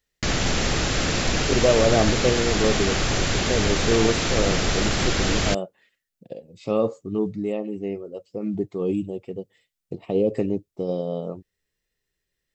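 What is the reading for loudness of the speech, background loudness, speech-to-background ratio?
-26.0 LUFS, -23.0 LUFS, -3.0 dB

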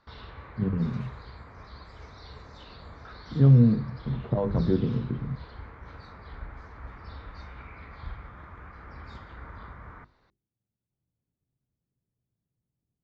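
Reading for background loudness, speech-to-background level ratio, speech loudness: -44.5 LUFS, 20.0 dB, -24.5 LUFS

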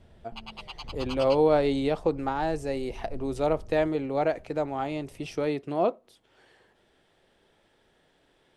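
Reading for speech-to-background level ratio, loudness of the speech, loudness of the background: 16.5 dB, -27.5 LUFS, -44.0 LUFS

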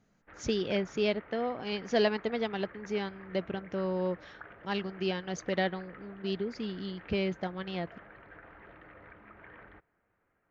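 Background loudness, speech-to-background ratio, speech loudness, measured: -51.5 LUFS, 18.0 dB, -33.5 LUFS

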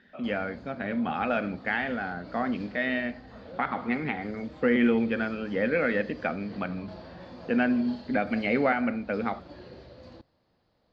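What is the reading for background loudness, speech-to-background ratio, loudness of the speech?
-47.0 LUFS, 18.5 dB, -28.5 LUFS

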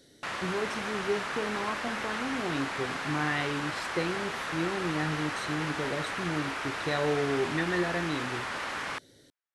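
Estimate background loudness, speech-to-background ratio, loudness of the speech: -34.0 LUFS, 0.5 dB, -33.5 LUFS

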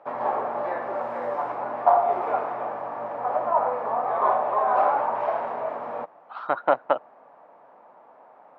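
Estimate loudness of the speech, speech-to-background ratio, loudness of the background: -25.5 LUFS, 0.0 dB, -25.5 LUFS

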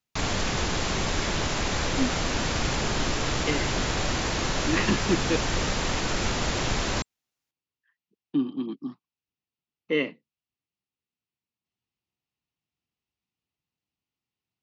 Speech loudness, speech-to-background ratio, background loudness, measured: -30.0 LUFS, -3.0 dB, -27.0 LUFS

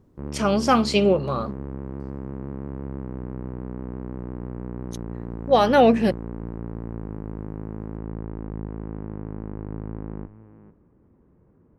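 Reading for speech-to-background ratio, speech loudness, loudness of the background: 14.5 dB, -20.0 LUFS, -34.5 LUFS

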